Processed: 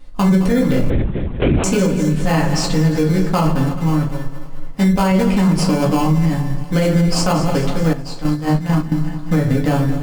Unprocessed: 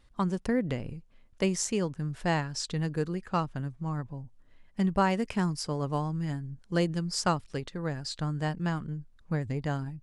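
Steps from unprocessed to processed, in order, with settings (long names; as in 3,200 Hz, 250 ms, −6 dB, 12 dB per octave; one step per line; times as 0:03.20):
feedback delay that plays each chunk backwards 107 ms, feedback 76%, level −13.5 dB
in parallel at −4.5 dB: sample-rate reduction 1,900 Hz, jitter 0%
on the sum: rectangular room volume 120 cubic metres, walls furnished, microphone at 2 metres
0:00.90–0:01.64: linear-prediction vocoder at 8 kHz whisper
0:04.08–0:05.12: parametric band 120 Hz −7.5 dB 2.2 octaves
0:07.93–0:08.92: noise gate −20 dBFS, range −10 dB
boost into a limiter +14.5 dB
level −6 dB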